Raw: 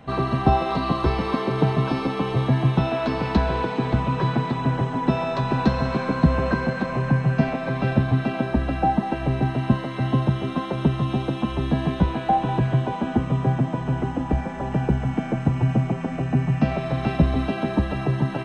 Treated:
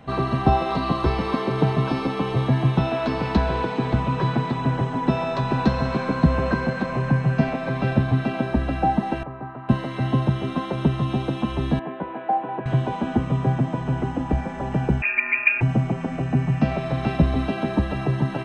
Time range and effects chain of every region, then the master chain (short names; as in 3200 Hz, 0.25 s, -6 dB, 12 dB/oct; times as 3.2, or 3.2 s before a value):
9.23–9.69 band-pass 1200 Hz, Q 2.4 + tilt -4 dB/oct
11.79–12.66 BPF 380–2600 Hz + air absorption 430 m + notch 1200 Hz, Q 16
15.02–15.61 comb 5.1 ms, depth 69% + inverted band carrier 2600 Hz
whole clip: dry